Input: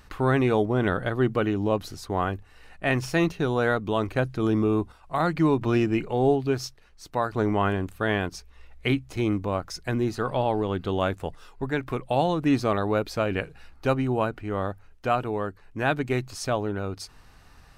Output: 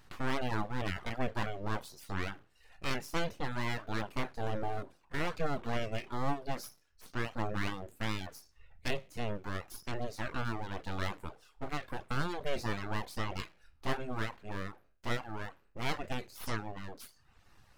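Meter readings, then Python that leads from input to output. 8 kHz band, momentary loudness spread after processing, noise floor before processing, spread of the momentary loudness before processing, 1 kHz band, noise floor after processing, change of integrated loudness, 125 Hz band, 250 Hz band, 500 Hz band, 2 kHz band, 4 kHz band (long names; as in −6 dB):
−7.5 dB, 8 LU, −53 dBFS, 9 LU, −10.5 dB, −66 dBFS, −12.5 dB, −11.5 dB, −15.0 dB, −15.0 dB, −8.0 dB, −5.5 dB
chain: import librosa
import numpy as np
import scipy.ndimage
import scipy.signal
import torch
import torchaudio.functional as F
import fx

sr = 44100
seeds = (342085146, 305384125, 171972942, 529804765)

y = fx.spec_trails(x, sr, decay_s=0.4)
y = np.abs(y)
y = fx.dereverb_blind(y, sr, rt60_s=0.71)
y = y * 10.0 ** (-8.0 / 20.0)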